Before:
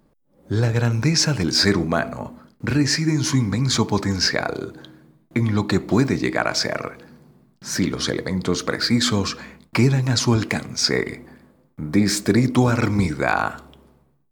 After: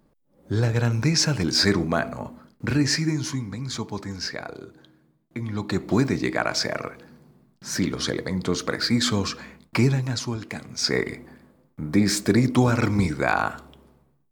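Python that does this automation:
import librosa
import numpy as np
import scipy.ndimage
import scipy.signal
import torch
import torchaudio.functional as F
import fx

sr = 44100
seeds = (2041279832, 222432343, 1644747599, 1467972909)

y = fx.gain(x, sr, db=fx.line((3.02, -2.5), (3.43, -11.0), (5.4, -11.0), (5.91, -3.0), (9.91, -3.0), (10.4, -13.0), (10.97, -2.0)))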